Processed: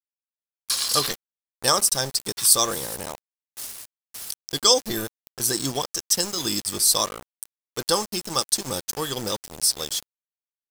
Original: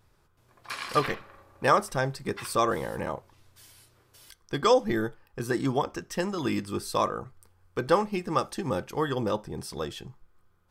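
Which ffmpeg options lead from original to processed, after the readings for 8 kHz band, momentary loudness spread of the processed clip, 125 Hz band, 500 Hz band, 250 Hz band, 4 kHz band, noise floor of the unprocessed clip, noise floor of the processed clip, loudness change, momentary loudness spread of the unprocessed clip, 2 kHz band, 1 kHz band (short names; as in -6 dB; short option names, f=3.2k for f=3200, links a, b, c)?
+21.5 dB, 18 LU, -3.0 dB, -2.0 dB, -2.5 dB, +15.5 dB, -65 dBFS, under -85 dBFS, +6.5 dB, 13 LU, -1.5 dB, -1.5 dB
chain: -af "aexciter=amount=11.3:drive=5:freq=3.5k,aeval=exprs='val(0)*gte(abs(val(0)),0.0355)':c=same,volume=-1.5dB"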